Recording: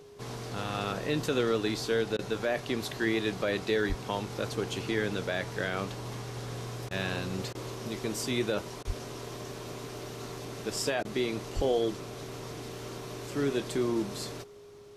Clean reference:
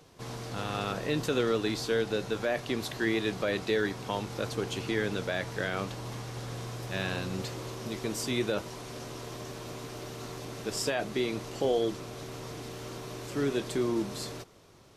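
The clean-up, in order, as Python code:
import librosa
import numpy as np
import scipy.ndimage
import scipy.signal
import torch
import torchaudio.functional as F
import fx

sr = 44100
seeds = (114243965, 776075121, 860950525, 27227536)

y = fx.notch(x, sr, hz=410.0, q=30.0)
y = fx.fix_deplosive(y, sr, at_s=(3.88, 8.86, 11.55))
y = fx.fix_interpolate(y, sr, at_s=(2.17, 6.89, 7.53, 8.83, 11.03), length_ms=18.0)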